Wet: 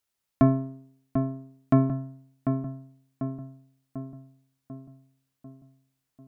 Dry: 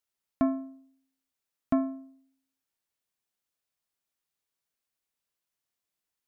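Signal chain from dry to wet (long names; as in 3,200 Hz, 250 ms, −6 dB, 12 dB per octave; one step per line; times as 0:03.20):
sub-octave generator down 1 octave, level 0 dB
on a send: feedback echo with a low-pass in the loop 744 ms, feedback 56%, low-pass 1,800 Hz, level −6.5 dB
on the sum: level +4.5 dB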